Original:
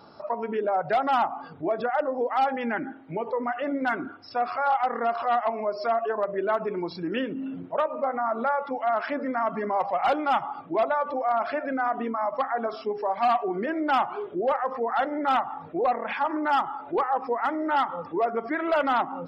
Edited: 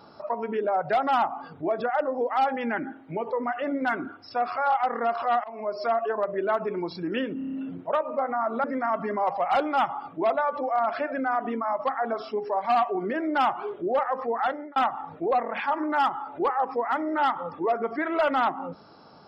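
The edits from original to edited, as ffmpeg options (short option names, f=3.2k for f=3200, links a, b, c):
-filter_complex "[0:a]asplit=9[a][b][c][d][e][f][g][h][i];[a]atrim=end=5.44,asetpts=PTS-STARTPTS,afade=t=out:st=5.436:d=0.004:c=hsin:silence=0.0707946[j];[b]atrim=start=5.44:end=7.412,asetpts=PTS-STARTPTS,afade=t=in:d=0.43:c=qsin:silence=0.0707946[k];[c]atrim=start=7.378:end=7.412[l];[d]atrim=start=7.378:end=7.412[m];[e]atrim=start=7.378:end=7.412[n];[f]atrim=start=7.378:end=7.412[o];[g]atrim=start=7.378:end=8.492[p];[h]atrim=start=9.168:end=15.29,asetpts=PTS-STARTPTS,afade=t=out:st=5.782:d=0.34[q];[i]atrim=start=15.29,asetpts=PTS-STARTPTS,afade=t=in:d=0.004:c=hsin[r];[j][k]concat=n=2:v=0:a=1[s];[s][l]acrossfade=d=0.004:c1=hsin:c2=hsin[t];[t][m]acrossfade=d=0.004:c1=hsin:c2=hsin[u];[u][n]acrossfade=d=0.004:c1=hsin:c2=hsin[v];[v][o]acrossfade=d=0.004:c1=hsin:c2=hsin[w];[w][p]acrossfade=d=0.004:c1=hsin:c2=hsin[x];[q][r]concat=n=2:v=0:a=1[y];[x][y]acrossfade=d=0.004:c1=hsin:c2=hsin"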